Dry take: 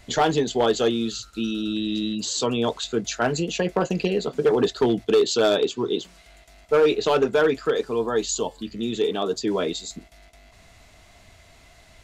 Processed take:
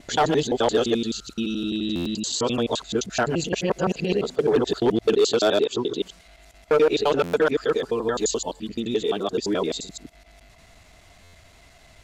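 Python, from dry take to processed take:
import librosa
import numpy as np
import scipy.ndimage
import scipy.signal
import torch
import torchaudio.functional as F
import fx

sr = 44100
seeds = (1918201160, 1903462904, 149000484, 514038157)

y = fx.local_reverse(x, sr, ms=86.0)
y = fx.buffer_glitch(y, sr, at_s=(1.95, 7.23, 11.23), block=512, repeats=8)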